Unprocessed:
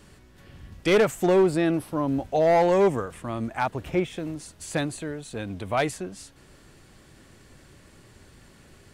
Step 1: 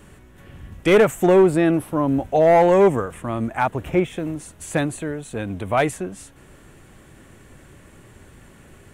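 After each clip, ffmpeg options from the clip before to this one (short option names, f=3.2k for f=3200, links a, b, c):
-af "equalizer=f=4.7k:t=o:w=0.67:g=-12,volume=5.5dB"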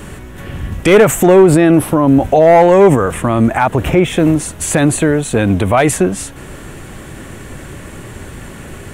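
-af "alimiter=level_in=17.5dB:limit=-1dB:release=50:level=0:latency=1,volume=-1dB"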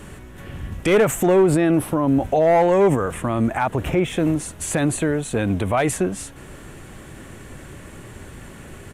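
-af "aresample=32000,aresample=44100,volume=-8.5dB"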